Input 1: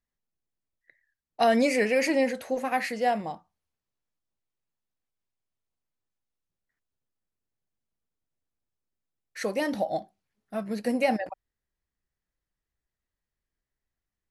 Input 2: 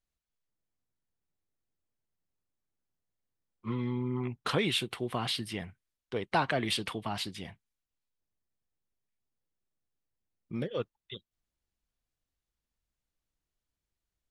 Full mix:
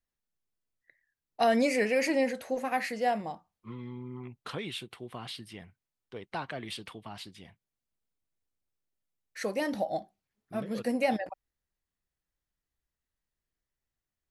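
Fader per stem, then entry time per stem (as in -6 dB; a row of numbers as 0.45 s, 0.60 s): -3.0 dB, -8.5 dB; 0.00 s, 0.00 s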